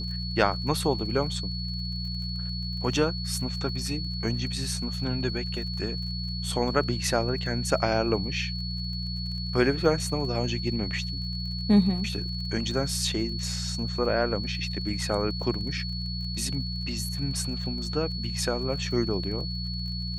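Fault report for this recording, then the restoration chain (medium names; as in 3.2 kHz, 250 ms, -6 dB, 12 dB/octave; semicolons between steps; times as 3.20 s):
crackle 35 per s -38 dBFS
hum 60 Hz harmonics 3 -33 dBFS
whine 4.4 kHz -35 dBFS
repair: de-click; band-stop 4.4 kHz, Q 30; de-hum 60 Hz, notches 3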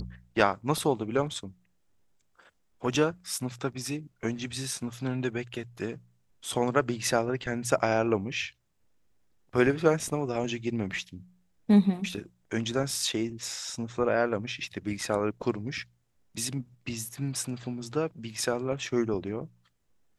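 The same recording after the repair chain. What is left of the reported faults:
nothing left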